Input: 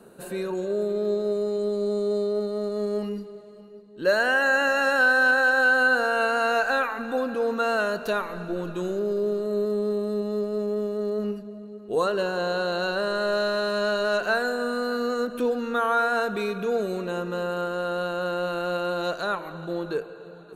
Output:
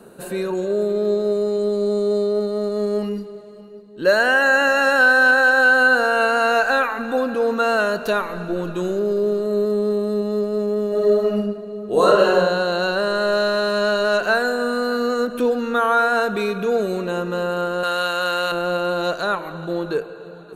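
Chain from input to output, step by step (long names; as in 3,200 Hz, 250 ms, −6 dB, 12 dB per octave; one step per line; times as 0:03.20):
0:10.88–0:12.35: thrown reverb, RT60 0.92 s, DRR −3 dB
0:17.83–0:18.52: tilt shelving filter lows −9.5 dB, about 750 Hz
level +5.5 dB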